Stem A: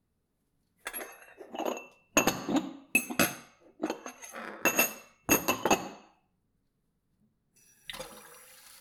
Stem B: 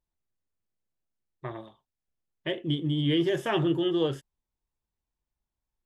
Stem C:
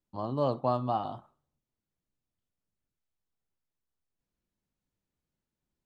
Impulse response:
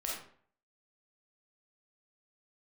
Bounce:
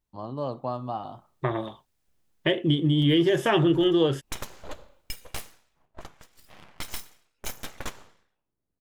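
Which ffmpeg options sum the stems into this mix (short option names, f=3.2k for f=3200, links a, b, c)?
-filter_complex "[0:a]aeval=exprs='abs(val(0))':c=same,adelay=2150,volume=-7.5dB[a];[1:a]dynaudnorm=f=310:g=5:m=12dB,volume=2dB[b];[2:a]volume=-2dB[c];[a][b][c]amix=inputs=3:normalize=0,acompressor=threshold=-25dB:ratio=2"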